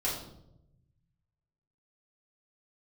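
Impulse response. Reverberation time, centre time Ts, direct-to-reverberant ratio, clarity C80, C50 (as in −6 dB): 0.80 s, 42 ms, −7.5 dB, 7.5 dB, 4.0 dB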